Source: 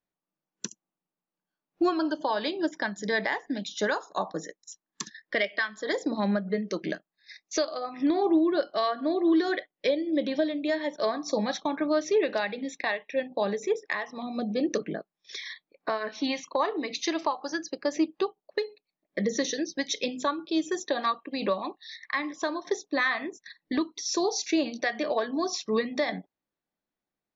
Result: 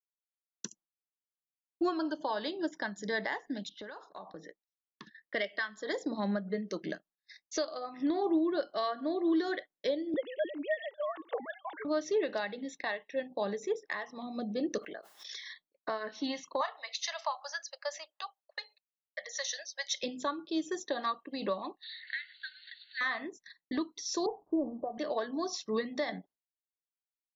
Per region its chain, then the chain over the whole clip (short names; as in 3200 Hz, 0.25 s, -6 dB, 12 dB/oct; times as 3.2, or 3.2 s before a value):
3.69–5.34 low-pass opened by the level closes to 1700 Hz, open at -23.5 dBFS + compressor 8:1, threshold -35 dBFS + LPF 4900 Hz 24 dB/oct
10.14–11.85 sine-wave speech + tilt shelf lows -6.5 dB, about 860 Hz
14.78–15.44 HPF 680 Hz + backwards sustainer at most 36 dB/s
16.61–20.03 elliptic high-pass 580 Hz + tilt shelf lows -4 dB, about 780 Hz
21.83–23.01 switching spikes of -29 dBFS + brick-wall FIR band-pass 1400–4600 Hz
24.26–24.98 G.711 law mismatch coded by mu + steep low-pass 1100 Hz 72 dB/oct
whole clip: notch 2400 Hz, Q 6.5; expander -49 dBFS; gain -6 dB